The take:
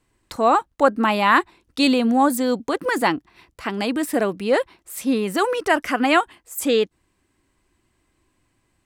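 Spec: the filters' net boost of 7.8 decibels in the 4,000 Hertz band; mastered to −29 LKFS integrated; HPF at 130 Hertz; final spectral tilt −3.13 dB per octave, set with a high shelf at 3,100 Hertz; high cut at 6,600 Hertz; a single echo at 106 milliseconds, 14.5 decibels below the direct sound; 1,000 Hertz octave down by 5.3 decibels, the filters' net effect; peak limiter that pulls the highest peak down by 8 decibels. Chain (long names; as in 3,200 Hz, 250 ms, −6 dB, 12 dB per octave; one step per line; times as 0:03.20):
high-pass filter 130 Hz
low-pass filter 6,600 Hz
parametric band 1,000 Hz −8 dB
high-shelf EQ 3,100 Hz +6 dB
parametric band 4,000 Hz +6.5 dB
brickwall limiter −11.5 dBFS
single-tap delay 106 ms −14.5 dB
level −6 dB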